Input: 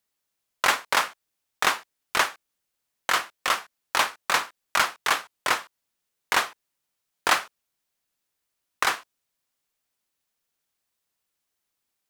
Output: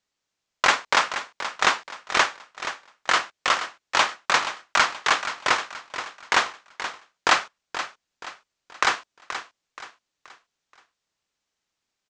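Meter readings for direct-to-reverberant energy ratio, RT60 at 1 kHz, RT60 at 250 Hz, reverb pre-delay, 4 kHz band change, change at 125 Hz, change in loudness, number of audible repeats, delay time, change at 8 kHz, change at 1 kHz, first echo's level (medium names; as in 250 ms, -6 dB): no reverb, no reverb, no reverb, no reverb, +3.0 dB, +3.0 dB, +1.5 dB, 3, 477 ms, +0.5 dB, +3.0 dB, -11.0 dB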